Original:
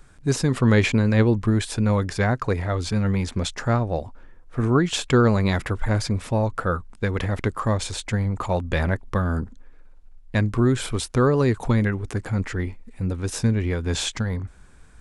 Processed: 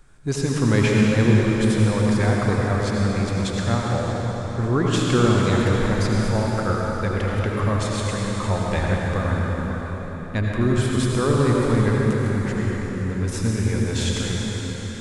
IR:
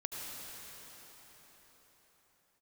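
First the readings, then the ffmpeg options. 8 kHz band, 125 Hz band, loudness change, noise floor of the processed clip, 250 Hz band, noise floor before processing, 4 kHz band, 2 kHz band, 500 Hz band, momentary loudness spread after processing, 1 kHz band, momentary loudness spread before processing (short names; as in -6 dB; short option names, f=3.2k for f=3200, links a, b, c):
+1.0 dB, +2.0 dB, +1.5 dB, -30 dBFS, +2.0 dB, -48 dBFS, +1.5 dB, +1.5 dB, +1.5 dB, 8 LU, +2.0 dB, 9 LU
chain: -filter_complex "[1:a]atrim=start_sample=2205[a];[0:a][a]afir=irnorm=-1:irlink=0"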